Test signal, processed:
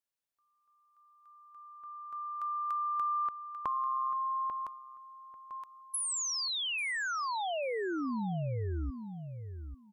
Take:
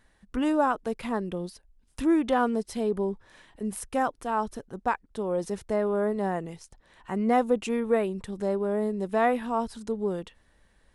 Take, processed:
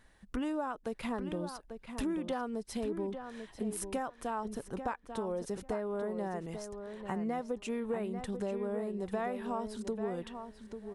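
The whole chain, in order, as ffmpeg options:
-filter_complex "[0:a]acompressor=threshold=0.0224:ratio=6,asplit=2[s0][s1];[s1]adelay=842,lowpass=f=3400:p=1,volume=0.398,asplit=2[s2][s3];[s3]adelay=842,lowpass=f=3400:p=1,volume=0.17,asplit=2[s4][s5];[s5]adelay=842,lowpass=f=3400:p=1,volume=0.17[s6];[s0][s2][s4][s6]amix=inputs=4:normalize=0"

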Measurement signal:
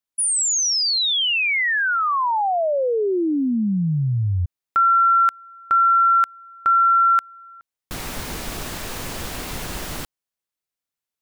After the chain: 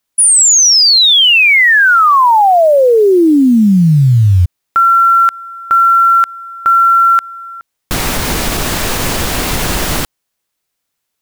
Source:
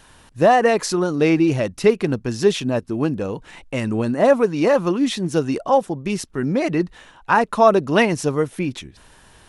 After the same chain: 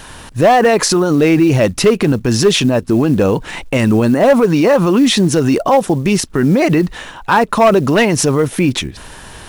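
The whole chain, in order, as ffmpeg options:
-af "volume=2.99,asoftclip=hard,volume=0.335,acrusher=bits=8:mode=log:mix=0:aa=0.000001,alimiter=level_in=8.41:limit=0.891:release=50:level=0:latency=1,volume=0.668"

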